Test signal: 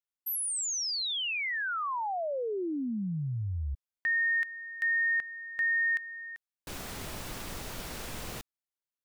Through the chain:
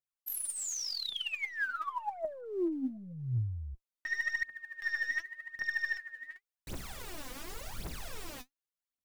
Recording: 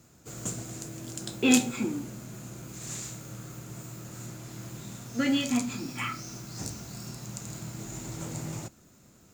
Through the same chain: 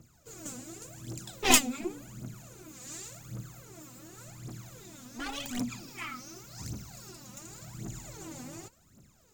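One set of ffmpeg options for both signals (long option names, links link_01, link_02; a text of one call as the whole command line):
ffmpeg -i in.wav -af "aeval=exprs='0.562*(cos(1*acos(clip(val(0)/0.562,-1,1)))-cos(1*PI/2))+0.0126*(cos(4*acos(clip(val(0)/0.562,-1,1)))-cos(4*PI/2))+0.112*(cos(7*acos(clip(val(0)/0.562,-1,1)))-cos(7*PI/2))':channel_layout=same,aphaser=in_gain=1:out_gain=1:delay=4.1:decay=0.77:speed=0.89:type=triangular" out.wav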